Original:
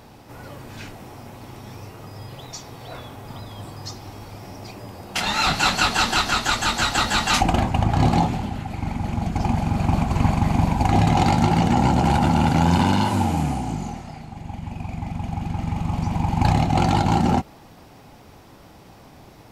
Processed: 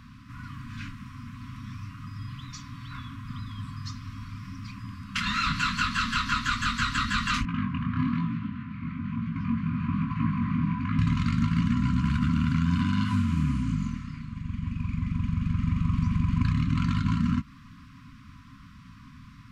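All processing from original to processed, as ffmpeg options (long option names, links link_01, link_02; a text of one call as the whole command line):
ffmpeg -i in.wav -filter_complex "[0:a]asettb=1/sr,asplit=3[link_01][link_02][link_03];[link_01]atrim=end=7.454[link_04];[link_02]atrim=start=7.45:end=10.99,asetpts=PTS-STARTPTS,afade=type=in:duration=0.004:curve=qsin,afade=type=out:start_time=3.536:duration=0.004:curve=qsin,highpass=150,lowpass=2500,flanger=delay=17.5:depth=7.2:speed=1.1[link_05];[link_03]atrim=start=10.986[link_06];[link_04][link_05]acrossfade=duration=0.004:curve1=hsin:curve2=qsin[link_07];[link_07][link_06]acrossfade=duration=0.004:curve1=qsin:curve2=hsin,acompressor=threshold=-20dB:ratio=6,afftfilt=real='re*(1-between(b*sr/4096,280,980))':imag='im*(1-between(b*sr/4096,280,980))':win_size=4096:overlap=0.75,aemphasis=mode=reproduction:type=75fm" out.wav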